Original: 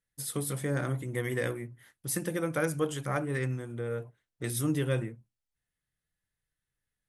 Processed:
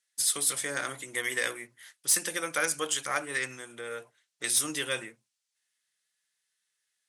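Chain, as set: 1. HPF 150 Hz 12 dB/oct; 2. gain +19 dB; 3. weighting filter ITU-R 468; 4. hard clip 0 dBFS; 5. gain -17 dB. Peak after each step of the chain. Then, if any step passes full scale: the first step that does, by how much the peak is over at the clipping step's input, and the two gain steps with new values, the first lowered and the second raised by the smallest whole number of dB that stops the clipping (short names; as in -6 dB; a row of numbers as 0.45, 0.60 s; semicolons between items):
-16.0, +3.0, +7.5, 0.0, -17.0 dBFS; step 2, 7.5 dB; step 2 +11 dB, step 5 -9 dB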